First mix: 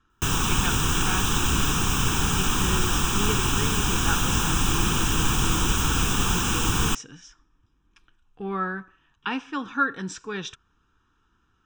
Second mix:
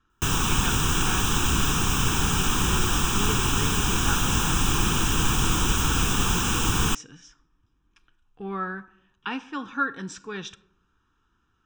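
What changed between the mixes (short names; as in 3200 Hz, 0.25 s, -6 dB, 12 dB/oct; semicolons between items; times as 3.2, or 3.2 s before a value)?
speech -3.5 dB; reverb: on, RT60 0.70 s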